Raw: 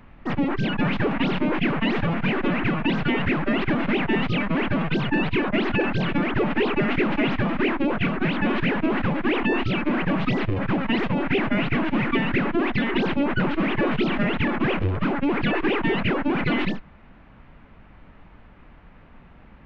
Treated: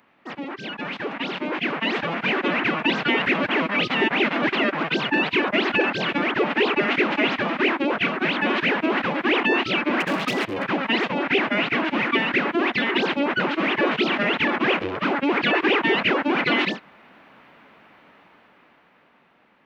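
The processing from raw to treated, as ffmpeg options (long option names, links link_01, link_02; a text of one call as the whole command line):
ffmpeg -i in.wav -filter_complex "[0:a]asettb=1/sr,asplit=3[link_01][link_02][link_03];[link_01]atrim=end=10.004[link_04];[link_02]atrim=start=10:end=10.66,asetpts=PTS-STARTPTS,afade=type=in:duration=0.004:curve=qsin,afade=type=out:start_time=0.656:duration=0.004:curve=qsin,asoftclip=type=hard:threshold=-18.5dB[link_05];[link_03]atrim=start=10.656[link_06];[link_04][link_05]acrossfade=duration=0.004:curve1=hsin:curve2=qsin[link_07];[link_07][link_06]acrossfade=duration=0.004:curve1=qsin:curve2=hsin,asplit=3[link_08][link_09][link_10];[link_08]atrim=end=3.342[link_11];[link_09]atrim=start=3.338:end=4.832,asetpts=PTS-STARTPTS,areverse[link_12];[link_10]atrim=start=4.828[link_13];[link_11][link_12]acrossfade=duration=0.004:curve1=hsin:curve2=hsin[link_14];[link_14][link_13]acrossfade=duration=0.004:curve1=hsin:curve2=hsin,highpass=320,highshelf=frequency=3600:gain=9.5,dynaudnorm=framelen=320:gausssize=11:maxgain=11.5dB,volume=-6dB" out.wav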